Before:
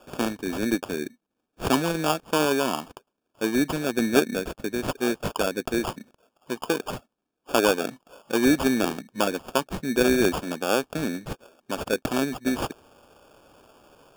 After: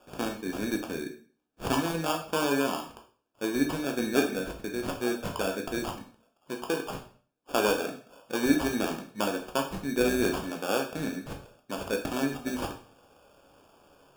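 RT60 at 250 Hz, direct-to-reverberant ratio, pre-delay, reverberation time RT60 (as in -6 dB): 0.50 s, 2.0 dB, 6 ms, 0.45 s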